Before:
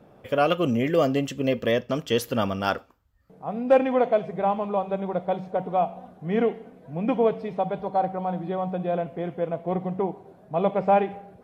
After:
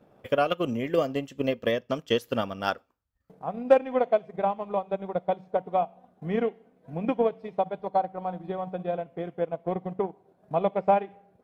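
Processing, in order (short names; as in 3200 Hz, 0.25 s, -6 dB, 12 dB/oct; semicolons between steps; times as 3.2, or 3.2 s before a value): transient shaper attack +7 dB, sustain -8 dB; low shelf 130 Hz -4 dB; gain -5.5 dB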